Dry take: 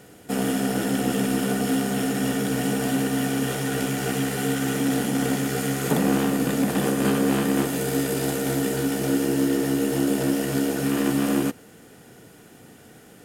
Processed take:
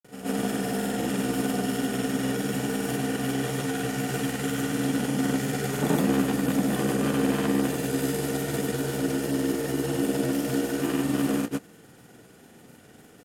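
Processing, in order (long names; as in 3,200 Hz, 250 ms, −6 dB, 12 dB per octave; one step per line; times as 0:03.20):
backwards echo 132 ms −11 dB
granular cloud, pitch spread up and down by 0 semitones
level −2 dB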